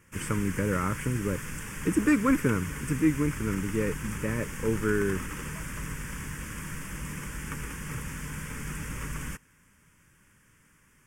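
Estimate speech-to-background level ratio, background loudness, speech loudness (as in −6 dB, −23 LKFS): 8.5 dB, −37.5 LKFS, −29.0 LKFS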